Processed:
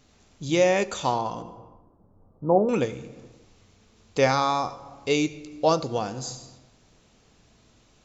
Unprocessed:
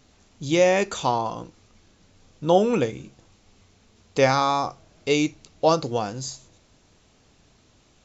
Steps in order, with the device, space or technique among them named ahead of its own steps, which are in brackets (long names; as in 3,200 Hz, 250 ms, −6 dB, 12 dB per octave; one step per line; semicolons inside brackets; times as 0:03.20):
0:01.42–0:02.69: Butterworth low-pass 1,100 Hz 36 dB per octave
compressed reverb return (on a send at −4.5 dB: convolution reverb RT60 0.85 s, pre-delay 67 ms + downward compressor 6 to 1, threshold −31 dBFS, peak gain reduction 18 dB)
on the sum: level −2 dB